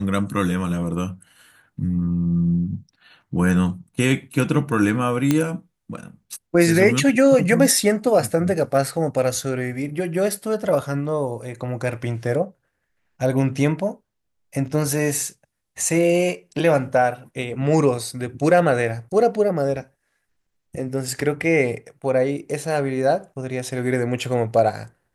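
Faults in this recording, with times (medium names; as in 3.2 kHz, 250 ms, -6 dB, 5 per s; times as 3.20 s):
5.31 s: pop -5 dBFS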